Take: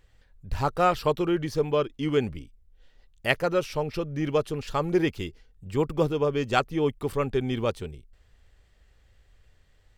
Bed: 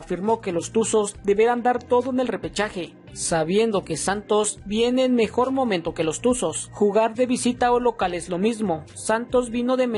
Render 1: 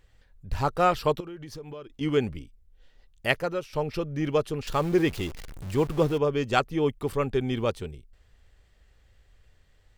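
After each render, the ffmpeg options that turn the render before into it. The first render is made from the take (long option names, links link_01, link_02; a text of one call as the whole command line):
ffmpeg -i in.wav -filter_complex "[0:a]asettb=1/sr,asplit=3[link_01][link_02][link_03];[link_01]atrim=end=1.204[link_04];[link_02]atrim=start=1.2:end=2.01,asetpts=PTS-STARTPTS,afade=type=in:duration=0.004:curve=qsin,afade=type=out:start_time=0.806:duration=0.004:curve=qsin,acompressor=threshold=-37dB:ratio=8:attack=3.2:release=140:knee=1:detection=peak[link_05];[link_03]atrim=start=2.006[link_06];[link_04][link_05]acrossfade=duration=0.004:curve1=hsin:curve2=qsin[link_07];[link_07][link_06]acrossfade=duration=0.004:curve1=qsin:curve2=hsin,asettb=1/sr,asplit=3[link_08][link_09][link_10];[link_08]atrim=end=4.674[link_11];[link_09]atrim=start=4.67:end=6.18,asetpts=PTS-STARTPTS,afade=type=in:duration=0.004:curve=qsin,afade=type=out:start_time=1.506:duration=0.004:curve=qsin,aeval=exprs='val(0)+0.5*0.0178*sgn(val(0))':channel_layout=same[link_12];[link_10]atrim=start=6.176[link_13];[link_11][link_12]acrossfade=duration=0.004:curve1=hsin:curve2=qsin[link_14];[link_14][link_13]acrossfade=duration=0.004:curve1=qsin:curve2=hsin,asplit=2[link_15][link_16];[link_15]atrim=end=3.73,asetpts=PTS-STARTPTS,afade=type=out:start_time=3.27:duration=0.46:silence=0.237137[link_17];[link_16]atrim=start=3.73,asetpts=PTS-STARTPTS,afade=type=in:duration=0.004:curve=hsin:silence=0.237137[link_18];[link_17][link_18]concat=n=2:v=0:a=1" out.wav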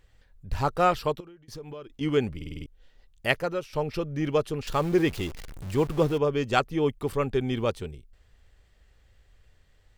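ffmpeg -i in.wav -filter_complex "[0:a]asplit=8[link_01][link_02][link_03][link_04][link_05][link_06][link_07][link_08];[link_01]atrim=end=1.48,asetpts=PTS-STARTPTS,afade=type=out:start_time=0.91:duration=0.57:silence=0.0749894[link_09];[link_02]atrim=start=1.48:end=2.412,asetpts=PTS-STARTPTS,afade=type=in:duration=0.004:curve=hsin:silence=0.0749894[link_10];[link_03]atrim=start=2.358:end=2.412[link_11];[link_04]atrim=start=2.358:end=2.412[link_12];[link_05]atrim=start=2.358:end=2.412[link_13];[link_06]atrim=start=2.358:end=2.412[link_14];[link_07]atrim=start=2.358:end=2.412[link_15];[link_08]atrim=start=2.658[link_16];[link_09][link_10]concat=n=2:v=0:a=1[link_17];[link_17][link_11]acrossfade=duration=0.004:curve1=hsin:curve2=hsin[link_18];[link_18][link_12]acrossfade=duration=0.004:curve1=hsin:curve2=hsin[link_19];[link_19][link_13]acrossfade=duration=0.004:curve1=hsin:curve2=hsin[link_20];[link_20][link_14]acrossfade=duration=0.004:curve1=hsin:curve2=hsin[link_21];[link_21][link_15]acrossfade=duration=0.004:curve1=hsin:curve2=hsin[link_22];[link_22][link_16]acrossfade=duration=0.004:curve1=hsin:curve2=hsin" out.wav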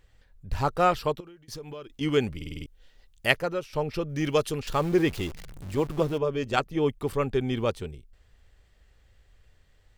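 ffmpeg -i in.wav -filter_complex "[0:a]asettb=1/sr,asplit=3[link_01][link_02][link_03];[link_01]atrim=end=1.254[link_04];[link_02]atrim=start=1.25:end=3.33,asetpts=PTS-STARTPTS,afade=type=in:duration=0.004:curve=qsin,afade=type=out:start_time=2.076:duration=0.004:curve=qsin,highshelf=frequency=2200:gain=5.5[link_05];[link_03]atrim=start=3.326[link_06];[link_04][link_05]acrossfade=duration=0.004:curve1=hsin:curve2=qsin[link_07];[link_07][link_06]acrossfade=duration=0.004:curve1=qsin:curve2=hsin,asettb=1/sr,asplit=3[link_08][link_09][link_10];[link_08]atrim=end=4.094[link_11];[link_09]atrim=start=4.09:end=4.6,asetpts=PTS-STARTPTS,afade=type=in:duration=0.004:curve=qsin,afade=type=out:start_time=0.506:duration=0.004:curve=qsin,highshelf=frequency=2700:gain=10.5[link_12];[link_10]atrim=start=4.596[link_13];[link_11][link_12]acrossfade=duration=0.004:curve1=hsin:curve2=qsin[link_14];[link_14][link_13]acrossfade=duration=0.004:curve1=qsin:curve2=hsin,asettb=1/sr,asplit=3[link_15][link_16][link_17];[link_15]atrim=end=5.344[link_18];[link_16]atrim=start=5.34:end=6.77,asetpts=PTS-STARTPTS,afade=type=in:duration=0.004:curve=qsin,afade=type=out:start_time=1.426:duration=0.004:curve=qsin,tremolo=f=150:d=0.519[link_19];[link_17]atrim=start=6.766[link_20];[link_18][link_19]acrossfade=duration=0.004:curve1=hsin:curve2=qsin[link_21];[link_21][link_20]acrossfade=duration=0.004:curve1=qsin:curve2=hsin" out.wav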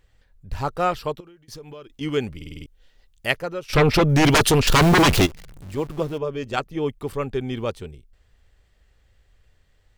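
ffmpeg -i in.wav -filter_complex "[0:a]asplit=3[link_01][link_02][link_03];[link_01]afade=type=out:start_time=3.68:duration=0.02[link_04];[link_02]aeval=exprs='0.266*sin(PI/2*5.01*val(0)/0.266)':channel_layout=same,afade=type=in:start_time=3.68:duration=0.02,afade=type=out:start_time=5.25:duration=0.02[link_05];[link_03]afade=type=in:start_time=5.25:duration=0.02[link_06];[link_04][link_05][link_06]amix=inputs=3:normalize=0" out.wav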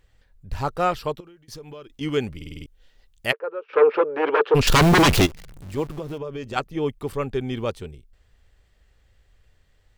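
ffmpeg -i in.wav -filter_complex "[0:a]asplit=3[link_01][link_02][link_03];[link_01]afade=type=out:start_time=3.31:duration=0.02[link_04];[link_02]highpass=frequency=440:width=0.5412,highpass=frequency=440:width=1.3066,equalizer=frequency=450:width_type=q:width=4:gain=9,equalizer=frequency=690:width_type=q:width=4:gain=-10,equalizer=frequency=2000:width_type=q:width=4:gain=-9,lowpass=frequency=2000:width=0.5412,lowpass=frequency=2000:width=1.3066,afade=type=in:start_time=3.31:duration=0.02,afade=type=out:start_time=4.54:duration=0.02[link_05];[link_03]afade=type=in:start_time=4.54:duration=0.02[link_06];[link_04][link_05][link_06]amix=inputs=3:normalize=0,asettb=1/sr,asplit=3[link_07][link_08][link_09];[link_07]atrim=end=5.894[link_10];[link_08]atrim=start=5.89:end=6.56,asetpts=PTS-STARTPTS,afade=type=in:duration=0.004:curve=qsin,afade=type=out:start_time=0.666:duration=0.004:curve=qsin,acompressor=threshold=-27dB:ratio=6:attack=3.2:release=140:knee=1:detection=peak[link_11];[link_09]atrim=start=6.556[link_12];[link_10][link_11]acrossfade=duration=0.004:curve1=hsin:curve2=qsin[link_13];[link_13][link_12]acrossfade=duration=0.004:curve1=qsin:curve2=hsin" out.wav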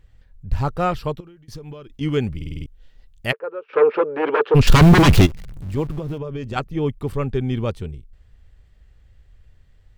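ffmpeg -i in.wav -af "bass=frequency=250:gain=9,treble=frequency=4000:gain=-3" out.wav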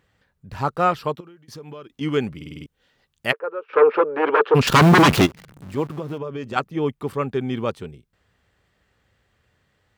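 ffmpeg -i in.wav -af "highpass=180,equalizer=frequency=1200:width=1.2:gain=4.5" out.wav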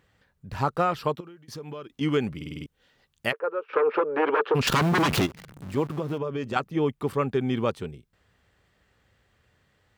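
ffmpeg -i in.wav -af "alimiter=limit=-9.5dB:level=0:latency=1:release=50,acompressor=threshold=-19dB:ratio=6" out.wav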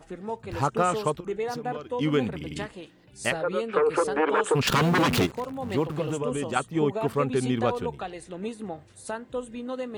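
ffmpeg -i in.wav -i bed.wav -filter_complex "[1:a]volume=-12dB[link_01];[0:a][link_01]amix=inputs=2:normalize=0" out.wav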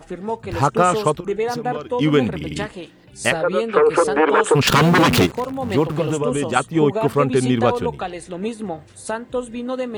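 ffmpeg -i in.wav -af "volume=8dB" out.wav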